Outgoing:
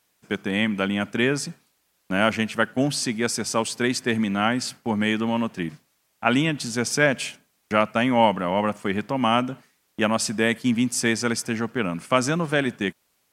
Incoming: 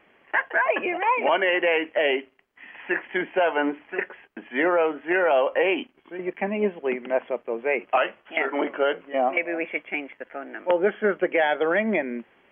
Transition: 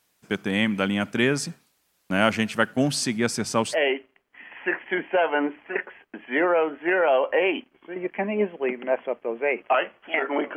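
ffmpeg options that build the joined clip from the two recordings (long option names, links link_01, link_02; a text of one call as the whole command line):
ffmpeg -i cue0.wav -i cue1.wav -filter_complex "[0:a]asettb=1/sr,asplit=3[link_01][link_02][link_03];[link_01]atrim=end=3.164[link_04];[link_02]atrim=start=3.16:end=3.78,asetpts=PTS-STARTPTS,afade=type=in:duration=0.004:curve=qsin,afade=type=out:start_time=0.616:duration=0.004:curve=qsin,bass=frequency=250:gain=3,treble=frequency=4000:gain=-4[link_05];[link_03]atrim=start=3.776[link_06];[link_04][link_05]acrossfade=duration=0.004:curve1=hsin:curve2=qsin[link_07];[link_07][link_06]acrossfade=duration=0.004:curve1=qsin:curve2=hsin,apad=whole_dur=10.56,atrim=end=10.56,atrim=end=3.78,asetpts=PTS-STARTPTS[link_08];[1:a]atrim=start=1.93:end=8.79,asetpts=PTS-STARTPTS[link_09];[link_08][link_09]acrossfade=duration=0.08:curve1=tri:curve2=tri" out.wav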